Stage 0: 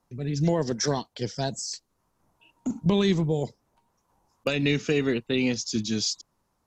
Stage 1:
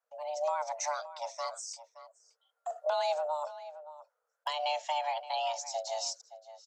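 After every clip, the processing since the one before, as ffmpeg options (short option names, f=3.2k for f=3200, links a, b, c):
-filter_complex "[0:a]afreqshift=450,agate=range=-7dB:threshold=-53dB:ratio=16:detection=peak,asplit=2[a][b];[b]adelay=571.4,volume=-14dB,highshelf=f=4k:g=-12.9[c];[a][c]amix=inputs=2:normalize=0,volume=-8.5dB"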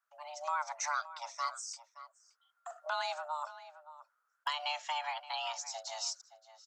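-af "highpass=f=1.3k:t=q:w=2.8,volume=-1.5dB"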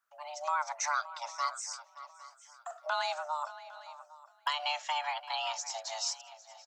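-af "aecho=1:1:807|1614|2421:0.112|0.0426|0.0162,volume=3dB"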